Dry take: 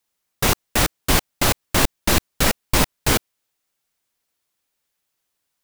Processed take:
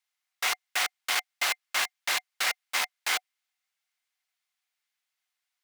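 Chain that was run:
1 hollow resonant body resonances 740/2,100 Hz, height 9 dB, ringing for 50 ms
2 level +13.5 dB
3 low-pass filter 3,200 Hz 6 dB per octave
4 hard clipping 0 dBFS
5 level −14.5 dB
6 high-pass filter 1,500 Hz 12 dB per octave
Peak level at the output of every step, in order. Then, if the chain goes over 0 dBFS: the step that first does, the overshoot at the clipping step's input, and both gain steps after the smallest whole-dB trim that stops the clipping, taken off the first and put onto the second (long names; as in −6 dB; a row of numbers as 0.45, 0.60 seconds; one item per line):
−2.5, +11.0, +9.5, 0.0, −14.5, −13.0 dBFS
step 2, 9.5 dB
step 2 +3.5 dB, step 5 −4.5 dB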